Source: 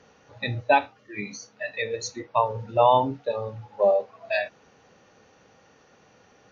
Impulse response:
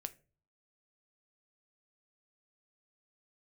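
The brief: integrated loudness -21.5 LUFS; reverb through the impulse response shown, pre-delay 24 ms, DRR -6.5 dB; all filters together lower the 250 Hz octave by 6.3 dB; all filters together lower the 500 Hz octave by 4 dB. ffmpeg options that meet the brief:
-filter_complex "[0:a]equalizer=f=250:t=o:g=-6.5,equalizer=f=500:t=o:g=-4,asplit=2[s0][s1];[1:a]atrim=start_sample=2205,adelay=24[s2];[s1][s2]afir=irnorm=-1:irlink=0,volume=2.99[s3];[s0][s3]amix=inputs=2:normalize=0,volume=0.841"

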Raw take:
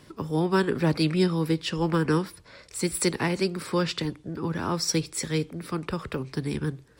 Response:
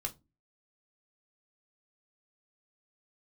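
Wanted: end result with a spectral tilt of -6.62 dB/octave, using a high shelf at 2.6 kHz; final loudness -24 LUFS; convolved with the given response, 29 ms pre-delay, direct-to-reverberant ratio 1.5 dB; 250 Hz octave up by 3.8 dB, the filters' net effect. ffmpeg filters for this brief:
-filter_complex "[0:a]equalizer=f=250:t=o:g=6.5,highshelf=f=2600:g=-5.5,asplit=2[s0][s1];[1:a]atrim=start_sample=2205,adelay=29[s2];[s1][s2]afir=irnorm=-1:irlink=0,volume=0.794[s3];[s0][s3]amix=inputs=2:normalize=0,volume=0.891"

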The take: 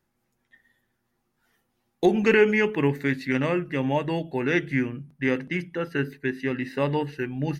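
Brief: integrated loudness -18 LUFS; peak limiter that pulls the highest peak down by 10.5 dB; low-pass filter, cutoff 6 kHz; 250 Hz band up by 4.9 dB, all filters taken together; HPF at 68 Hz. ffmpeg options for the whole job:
-af "highpass=68,lowpass=6000,equalizer=f=250:t=o:g=6,volume=2.82,alimiter=limit=0.422:level=0:latency=1"

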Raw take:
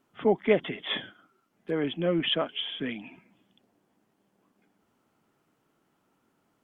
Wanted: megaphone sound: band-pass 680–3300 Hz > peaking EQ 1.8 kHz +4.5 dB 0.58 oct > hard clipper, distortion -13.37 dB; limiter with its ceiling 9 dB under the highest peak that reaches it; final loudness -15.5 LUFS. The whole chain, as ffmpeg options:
-af "alimiter=limit=0.119:level=0:latency=1,highpass=680,lowpass=3300,equalizer=f=1800:t=o:w=0.58:g=4.5,asoftclip=type=hard:threshold=0.0376,volume=10.6"

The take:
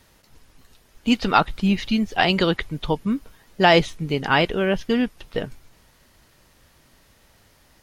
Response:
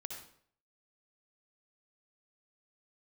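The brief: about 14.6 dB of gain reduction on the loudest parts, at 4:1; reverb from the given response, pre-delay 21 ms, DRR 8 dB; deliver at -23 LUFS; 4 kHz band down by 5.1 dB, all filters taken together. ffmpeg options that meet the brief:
-filter_complex "[0:a]equalizer=f=4000:t=o:g=-8,acompressor=threshold=0.0355:ratio=4,asplit=2[s0][s1];[1:a]atrim=start_sample=2205,adelay=21[s2];[s1][s2]afir=irnorm=-1:irlink=0,volume=0.531[s3];[s0][s3]amix=inputs=2:normalize=0,volume=2.82"

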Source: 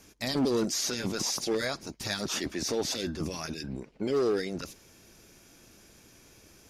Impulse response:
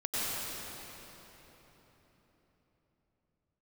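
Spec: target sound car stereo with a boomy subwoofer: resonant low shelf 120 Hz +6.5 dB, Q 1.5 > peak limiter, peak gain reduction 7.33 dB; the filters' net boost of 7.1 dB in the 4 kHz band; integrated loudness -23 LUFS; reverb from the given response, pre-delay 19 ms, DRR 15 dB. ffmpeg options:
-filter_complex "[0:a]equalizer=f=4000:t=o:g=9,asplit=2[s0][s1];[1:a]atrim=start_sample=2205,adelay=19[s2];[s1][s2]afir=irnorm=-1:irlink=0,volume=0.0668[s3];[s0][s3]amix=inputs=2:normalize=0,lowshelf=f=120:t=q:w=1.5:g=6.5,volume=2.24,alimiter=limit=0.224:level=0:latency=1"

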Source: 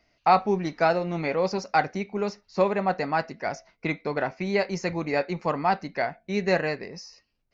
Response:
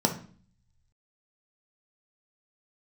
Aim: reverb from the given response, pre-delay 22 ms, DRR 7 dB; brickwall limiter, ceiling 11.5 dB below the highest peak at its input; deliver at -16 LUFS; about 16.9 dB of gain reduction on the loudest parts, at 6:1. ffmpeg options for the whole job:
-filter_complex "[0:a]acompressor=threshold=0.02:ratio=6,alimiter=level_in=2.11:limit=0.0631:level=0:latency=1,volume=0.473,asplit=2[s0][s1];[1:a]atrim=start_sample=2205,adelay=22[s2];[s1][s2]afir=irnorm=-1:irlink=0,volume=0.126[s3];[s0][s3]amix=inputs=2:normalize=0,volume=13.3"

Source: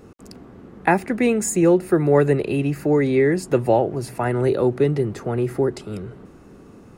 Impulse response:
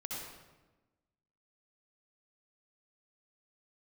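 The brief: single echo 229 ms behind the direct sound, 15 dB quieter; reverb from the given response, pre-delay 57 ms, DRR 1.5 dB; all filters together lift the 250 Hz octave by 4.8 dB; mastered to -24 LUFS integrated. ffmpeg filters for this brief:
-filter_complex "[0:a]equalizer=f=250:t=o:g=6.5,aecho=1:1:229:0.178,asplit=2[s0][s1];[1:a]atrim=start_sample=2205,adelay=57[s2];[s1][s2]afir=irnorm=-1:irlink=0,volume=0.794[s3];[s0][s3]amix=inputs=2:normalize=0,volume=0.335"

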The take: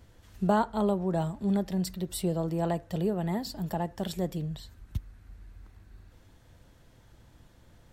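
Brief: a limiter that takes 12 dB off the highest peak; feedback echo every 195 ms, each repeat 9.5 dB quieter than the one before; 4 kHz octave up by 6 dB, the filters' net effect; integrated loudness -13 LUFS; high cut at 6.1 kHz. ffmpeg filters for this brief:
-af "lowpass=6100,equalizer=f=4000:t=o:g=8,alimiter=limit=0.0668:level=0:latency=1,aecho=1:1:195|390|585|780:0.335|0.111|0.0365|0.012,volume=10.6"

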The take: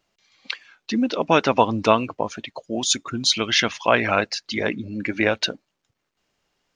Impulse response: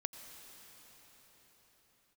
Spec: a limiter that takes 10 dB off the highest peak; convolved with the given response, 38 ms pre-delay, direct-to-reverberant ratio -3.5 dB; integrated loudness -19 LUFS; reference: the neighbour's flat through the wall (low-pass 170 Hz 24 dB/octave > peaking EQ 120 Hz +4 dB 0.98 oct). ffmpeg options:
-filter_complex "[0:a]alimiter=limit=0.266:level=0:latency=1,asplit=2[s0][s1];[1:a]atrim=start_sample=2205,adelay=38[s2];[s1][s2]afir=irnorm=-1:irlink=0,volume=1.68[s3];[s0][s3]amix=inputs=2:normalize=0,lowpass=f=170:w=0.5412,lowpass=f=170:w=1.3066,equalizer=f=120:t=o:w=0.98:g=4,volume=4.73"

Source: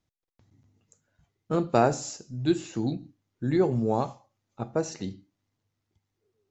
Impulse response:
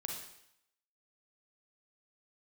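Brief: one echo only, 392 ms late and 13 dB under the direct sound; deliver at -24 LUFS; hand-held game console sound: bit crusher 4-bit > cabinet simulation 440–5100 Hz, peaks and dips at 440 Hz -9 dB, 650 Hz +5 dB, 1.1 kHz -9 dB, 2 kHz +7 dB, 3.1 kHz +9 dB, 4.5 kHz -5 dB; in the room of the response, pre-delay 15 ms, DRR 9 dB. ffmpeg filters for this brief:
-filter_complex "[0:a]aecho=1:1:392:0.224,asplit=2[s0][s1];[1:a]atrim=start_sample=2205,adelay=15[s2];[s1][s2]afir=irnorm=-1:irlink=0,volume=0.376[s3];[s0][s3]amix=inputs=2:normalize=0,acrusher=bits=3:mix=0:aa=0.000001,highpass=440,equalizer=f=440:t=q:w=4:g=-9,equalizer=f=650:t=q:w=4:g=5,equalizer=f=1100:t=q:w=4:g=-9,equalizer=f=2000:t=q:w=4:g=7,equalizer=f=3100:t=q:w=4:g=9,equalizer=f=4500:t=q:w=4:g=-5,lowpass=f=5100:w=0.5412,lowpass=f=5100:w=1.3066,volume=1.58"

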